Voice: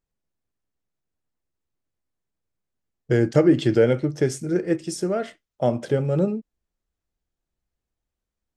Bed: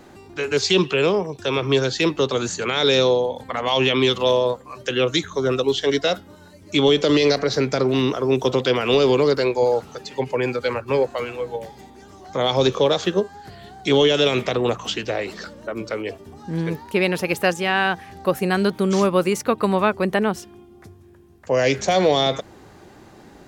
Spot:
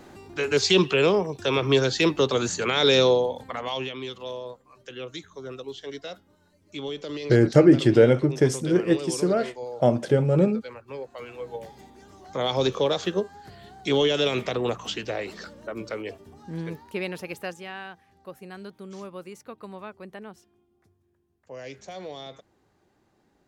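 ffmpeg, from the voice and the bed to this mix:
ffmpeg -i stem1.wav -i stem2.wav -filter_complex "[0:a]adelay=4200,volume=1.5dB[link_01];[1:a]volume=10dB,afade=type=out:start_time=3.12:duration=0.81:silence=0.16788,afade=type=in:start_time=11.06:duration=0.62:silence=0.266073,afade=type=out:start_time=15.86:duration=2.07:silence=0.16788[link_02];[link_01][link_02]amix=inputs=2:normalize=0" out.wav

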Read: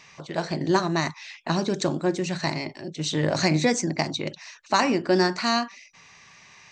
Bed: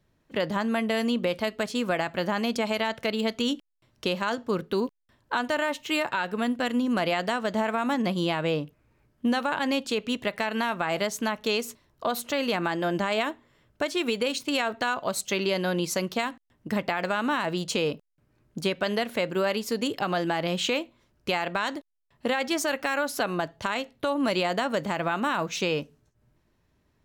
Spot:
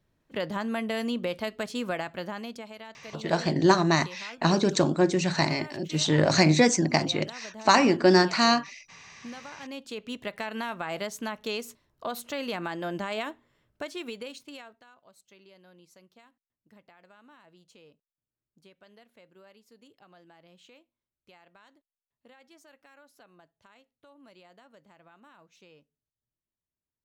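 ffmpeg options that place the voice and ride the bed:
ffmpeg -i stem1.wav -i stem2.wav -filter_complex "[0:a]adelay=2950,volume=2dB[link_01];[1:a]volume=7dB,afade=type=out:start_time=1.87:duration=0.83:silence=0.223872,afade=type=in:start_time=9.57:duration=0.76:silence=0.281838,afade=type=out:start_time=13.47:duration=1.36:silence=0.0668344[link_02];[link_01][link_02]amix=inputs=2:normalize=0" out.wav

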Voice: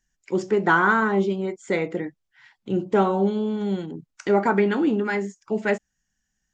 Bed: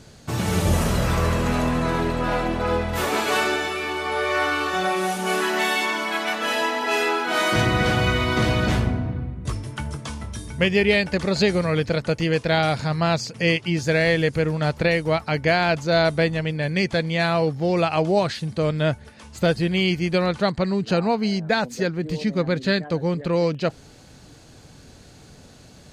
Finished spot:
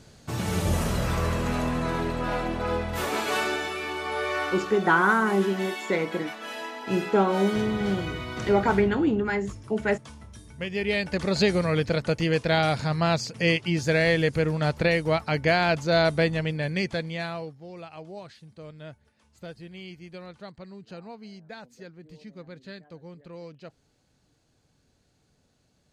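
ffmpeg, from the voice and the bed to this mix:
ffmpeg -i stem1.wav -i stem2.wav -filter_complex "[0:a]adelay=4200,volume=-2dB[link_01];[1:a]volume=5.5dB,afade=type=out:start_time=4.26:duration=0.54:silence=0.398107,afade=type=in:start_time=10.66:duration=0.7:silence=0.298538,afade=type=out:start_time=16.44:duration=1.14:silence=0.11885[link_02];[link_01][link_02]amix=inputs=2:normalize=0" out.wav

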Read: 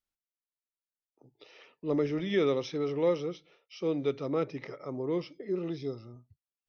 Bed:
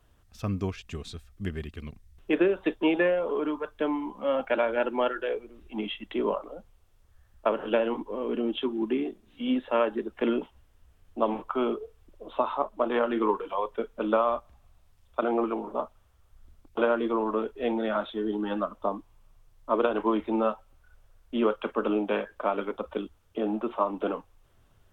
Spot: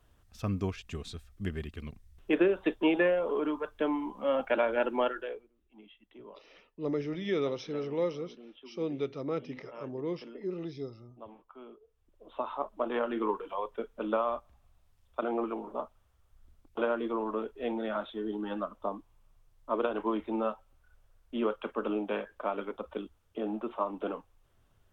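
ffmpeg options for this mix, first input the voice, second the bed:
ffmpeg -i stem1.wav -i stem2.wav -filter_complex "[0:a]adelay=4950,volume=-3.5dB[link_01];[1:a]volume=15dB,afade=type=out:start_time=5:duration=0.5:silence=0.0944061,afade=type=in:start_time=11.81:duration=0.89:silence=0.141254[link_02];[link_01][link_02]amix=inputs=2:normalize=0" out.wav

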